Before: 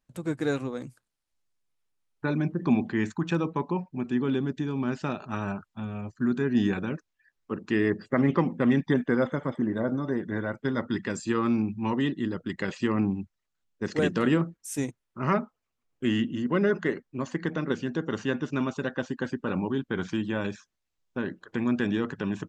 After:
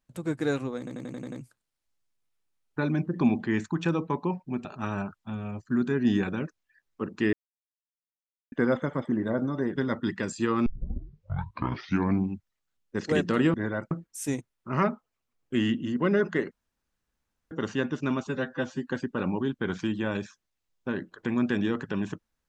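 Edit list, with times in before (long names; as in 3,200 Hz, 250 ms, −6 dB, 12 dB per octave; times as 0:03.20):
0:00.78: stutter 0.09 s, 7 plays
0:04.11–0:05.15: remove
0:07.83–0:09.02: silence
0:10.26–0:10.63: move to 0:14.41
0:11.53: tape start 1.61 s
0:17.01–0:18.01: fill with room tone
0:18.77–0:19.18: time-stretch 1.5×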